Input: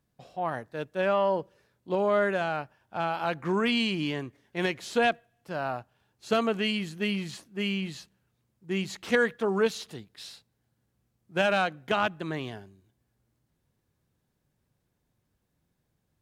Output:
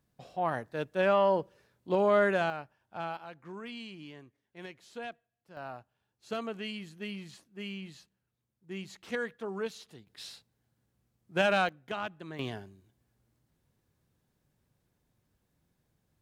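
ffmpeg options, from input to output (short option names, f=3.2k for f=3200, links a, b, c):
-af "asetnsamples=n=441:p=0,asendcmd='2.5 volume volume -7.5dB;3.17 volume volume -17dB;5.57 volume volume -10.5dB;10.07 volume volume -1.5dB;11.69 volume volume -10dB;12.39 volume volume 0.5dB',volume=0dB"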